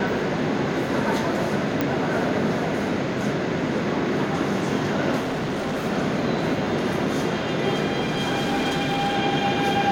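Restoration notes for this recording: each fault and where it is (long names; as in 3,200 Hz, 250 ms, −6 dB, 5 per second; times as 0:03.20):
0:01.81: click −10 dBFS
0:05.20–0:05.86: clipping −22.5 dBFS
0:08.01–0:09.16: clipping −19.5 dBFS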